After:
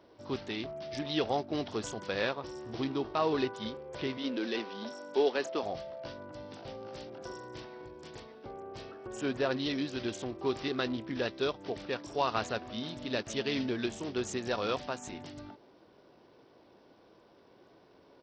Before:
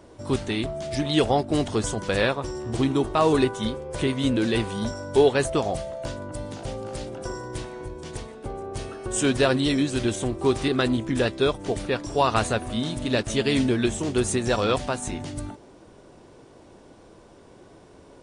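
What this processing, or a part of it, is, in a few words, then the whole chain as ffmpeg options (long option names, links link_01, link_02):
Bluetooth headset: -filter_complex "[0:a]asettb=1/sr,asplit=3[link_01][link_02][link_03];[link_01]atrim=end=4.174[link_04];[link_02]atrim=start=4.17:end=5.63,asetpts=PTS-STARTPTS,afade=type=in:duration=0.004:curve=qsin,afade=type=out:start_time=1.456:duration=0.004:curve=qsin,highpass=frequency=210:width=0.5412,highpass=frequency=210:width=1.3066[link_05];[link_03]atrim=start=5.626[link_06];[link_04][link_05]acrossfade=duration=0.004:curve1=hsin:curve2=qsin[link_07];[link_07][link_06]acrossfade=duration=0.004:curve1=qsin:curve2=hsin,asettb=1/sr,asplit=3[link_08][link_09][link_10];[link_08]atrim=end=8.914[link_11];[link_09]atrim=start=8.91:end=9.51,asetpts=PTS-STARTPTS,afade=type=in:duration=0.004:curve=qsin,afade=type=out:start_time=0.596:duration=0.004:curve=qsin,equalizer=frequency=5100:width_type=o:width=1.9:gain=-9[link_12];[link_10]atrim=start=9.506[link_13];[link_11][link_12]acrossfade=duration=0.004:curve1=hsin:curve2=qsin[link_14];[link_14][link_13]acrossfade=duration=0.004:curve1=qsin:curve2=hsin,highpass=frequency=240:poles=1,aresample=16000,aresample=44100,volume=-8.5dB" -ar 44100 -c:a sbc -b:a 64k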